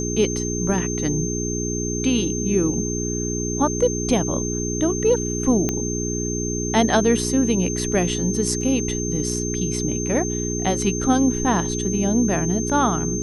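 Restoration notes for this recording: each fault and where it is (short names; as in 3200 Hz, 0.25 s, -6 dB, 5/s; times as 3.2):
hum 60 Hz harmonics 7 -26 dBFS
tone 6300 Hz -28 dBFS
5.69 pop -8 dBFS
8.61 gap 2.6 ms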